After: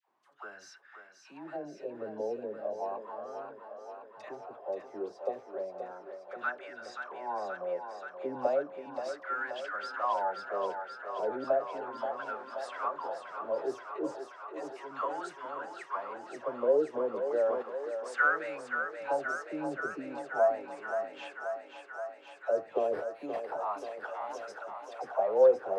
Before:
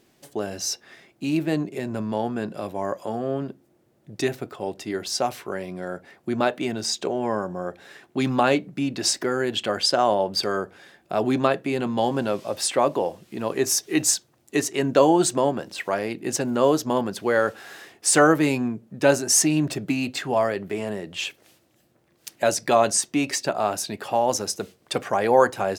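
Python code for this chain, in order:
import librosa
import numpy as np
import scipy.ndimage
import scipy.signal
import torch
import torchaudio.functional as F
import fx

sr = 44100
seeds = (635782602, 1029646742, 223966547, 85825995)

p1 = fx.high_shelf(x, sr, hz=11000.0, db=-6.0)
p2 = 10.0 ** (-22.0 / 20.0) * np.tanh(p1 / 10.0 ** (-22.0 / 20.0))
p3 = p1 + F.gain(torch.from_numpy(p2), -6.0).numpy()
p4 = fx.dispersion(p3, sr, late='lows', ms=95.0, hz=760.0)
p5 = fx.sample_hold(p4, sr, seeds[0], rate_hz=6700.0, jitter_pct=0, at=(22.8, 23.5))
p6 = fx.wah_lfo(p5, sr, hz=0.34, low_hz=460.0, high_hz=1500.0, q=5.6)
p7 = p6 + fx.echo_thinned(p6, sr, ms=529, feedback_pct=80, hz=360.0, wet_db=-7, dry=0)
p8 = fx.sustainer(p7, sr, db_per_s=52.0, at=(17.16, 17.61), fade=0.02)
y = F.gain(torch.from_numpy(p8), -3.0).numpy()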